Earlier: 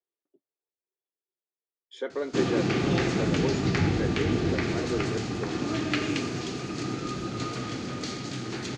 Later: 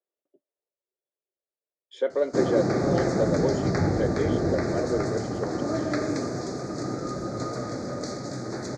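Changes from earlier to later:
background: add Butterworth band-reject 2,900 Hz, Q 1.1
master: add parametric band 580 Hz +12.5 dB 0.49 octaves

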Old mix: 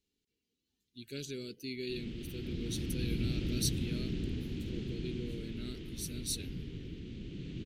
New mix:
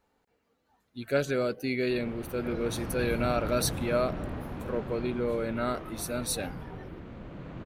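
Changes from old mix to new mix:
speech +10.5 dB
master: remove drawn EQ curve 400 Hz 0 dB, 600 Hz −23 dB, 1,100 Hz −25 dB, 3,000 Hz +7 dB, 6,000 Hz +9 dB, 10,000 Hz +4 dB

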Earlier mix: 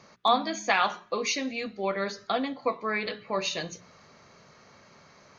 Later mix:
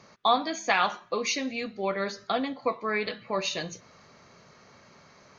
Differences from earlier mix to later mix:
background −12.0 dB
master: remove mains-hum notches 60/120/180/240/300/360/420 Hz

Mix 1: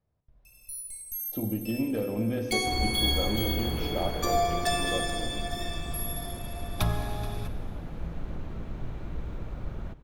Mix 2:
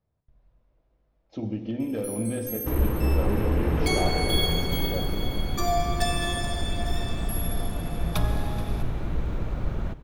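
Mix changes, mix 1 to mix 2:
first sound: entry +1.35 s
second sound +7.5 dB

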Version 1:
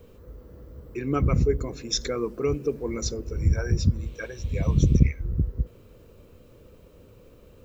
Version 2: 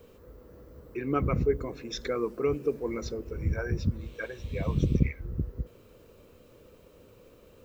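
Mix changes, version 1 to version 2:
speech: add low-pass filter 2,800 Hz 12 dB per octave
master: add low-shelf EQ 190 Hz −9 dB

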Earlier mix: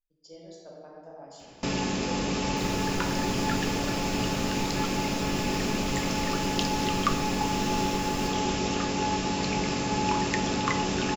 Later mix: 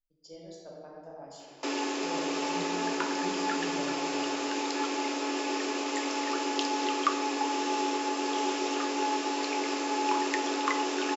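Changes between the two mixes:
first sound: add Chebyshev high-pass with heavy ripple 270 Hz, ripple 3 dB
second sound: muted

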